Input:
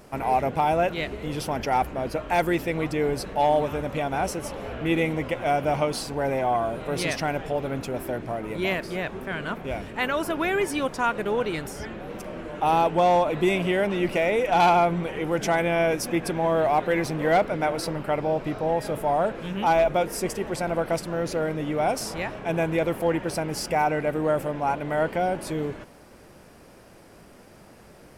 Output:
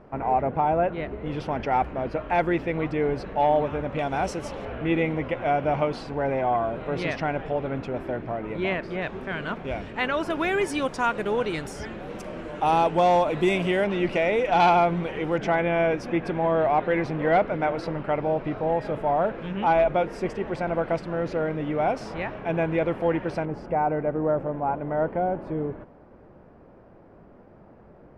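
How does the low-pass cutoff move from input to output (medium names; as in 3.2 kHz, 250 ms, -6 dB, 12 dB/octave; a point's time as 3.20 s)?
1.5 kHz
from 1.26 s 2.6 kHz
from 3.99 s 5.8 kHz
from 4.65 s 2.7 kHz
from 9.02 s 4.8 kHz
from 10.30 s 8.5 kHz
from 13.84 s 4.9 kHz
from 15.38 s 2.7 kHz
from 23.45 s 1.1 kHz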